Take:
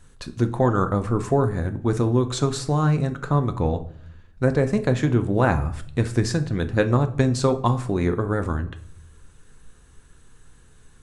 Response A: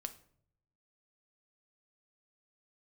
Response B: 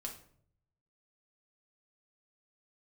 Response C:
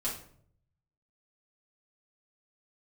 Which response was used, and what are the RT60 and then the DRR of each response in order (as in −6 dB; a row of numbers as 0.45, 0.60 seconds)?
A; 0.60, 0.60, 0.60 seconds; 8.0, 0.0, −7.5 decibels